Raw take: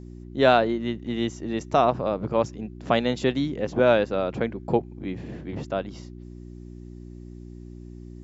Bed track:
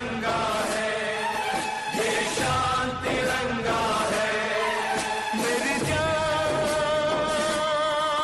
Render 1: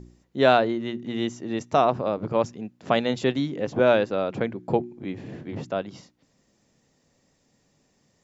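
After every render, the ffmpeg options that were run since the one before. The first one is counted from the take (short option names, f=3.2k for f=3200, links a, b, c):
-af "bandreject=f=60:t=h:w=4,bandreject=f=120:t=h:w=4,bandreject=f=180:t=h:w=4,bandreject=f=240:t=h:w=4,bandreject=f=300:t=h:w=4,bandreject=f=360:t=h:w=4"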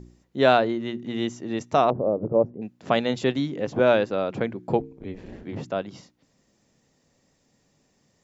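-filter_complex "[0:a]asettb=1/sr,asplit=3[a][b][c];[a]atrim=end=1.904[d];[b]atrim=start=1.9:end=2.62,asetpts=PTS-STARTPTS,afade=t=in:d=0.004:c=qsin,afade=t=out:st=0.716:d=0.004:c=qsin,lowpass=f=530:t=q:w=1.6[e];[c]atrim=start=2.616[f];[d][e]acrossfade=d=0.004:c1=hsin:c2=qsin[g];[g][f]acrossfade=d=0.004:c1=qsin:c2=hsin,asettb=1/sr,asplit=3[h][i][j];[h]atrim=end=4.804[k];[i]atrim=start=4.8:end=5.43,asetpts=PTS-STARTPTS,afade=t=in:d=0.004:c=qsin,afade=t=out:st=0.626:d=0.004:c=qsin,aeval=exprs='val(0)*sin(2*PI*94*n/s)':c=same[l];[j]atrim=start=5.426[m];[k][l]acrossfade=d=0.004:c1=hsin:c2=qsin[n];[n][m]acrossfade=d=0.004:c1=qsin:c2=hsin"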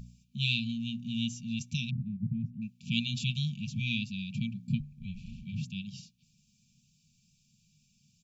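-af "afftfilt=real='re*(1-between(b*sr/4096,240,2300))':imag='im*(1-between(b*sr/4096,240,2300))':win_size=4096:overlap=0.75,aecho=1:1:6.8:0.31"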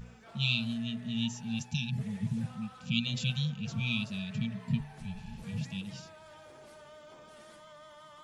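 -filter_complex "[1:a]volume=-28.5dB[a];[0:a][a]amix=inputs=2:normalize=0"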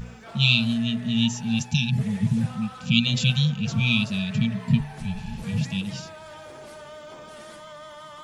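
-af "volume=10.5dB"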